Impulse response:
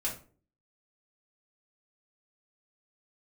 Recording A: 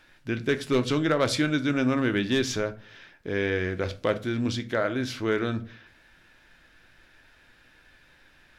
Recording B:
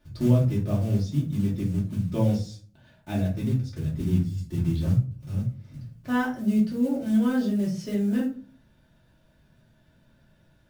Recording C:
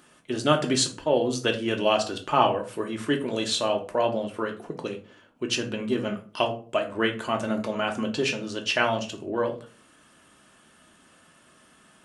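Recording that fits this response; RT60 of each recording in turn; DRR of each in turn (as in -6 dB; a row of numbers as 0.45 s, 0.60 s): B; 0.40 s, 0.40 s, 0.40 s; 8.5 dB, -5.5 dB, 2.0 dB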